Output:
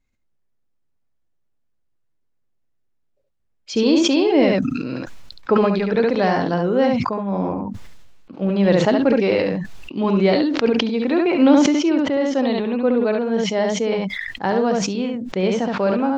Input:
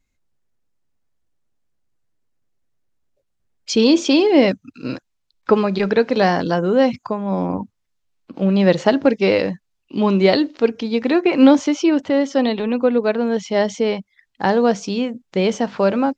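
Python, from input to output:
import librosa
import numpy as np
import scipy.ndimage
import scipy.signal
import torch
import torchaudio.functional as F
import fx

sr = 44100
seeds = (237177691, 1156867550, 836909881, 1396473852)

y = fx.high_shelf(x, sr, hz=5300.0, db=-9.5)
y = y + 10.0 ** (-5.0 / 20.0) * np.pad(y, (int(70 * sr / 1000.0), 0))[:len(y)]
y = fx.sustainer(y, sr, db_per_s=31.0)
y = F.gain(torch.from_numpy(y), -3.5).numpy()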